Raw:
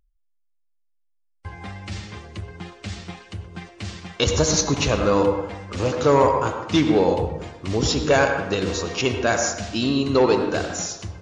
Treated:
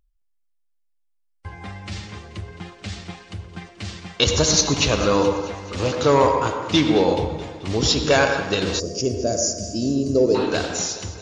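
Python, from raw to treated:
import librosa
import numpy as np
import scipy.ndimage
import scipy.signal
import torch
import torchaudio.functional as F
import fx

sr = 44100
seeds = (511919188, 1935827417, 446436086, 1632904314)

y = fx.dynamic_eq(x, sr, hz=4000.0, q=1.0, threshold_db=-41.0, ratio=4.0, max_db=6)
y = fx.echo_thinned(y, sr, ms=216, feedback_pct=58, hz=160.0, wet_db=-15.0)
y = fx.spec_box(y, sr, start_s=8.8, length_s=1.55, low_hz=690.0, high_hz=4500.0, gain_db=-22)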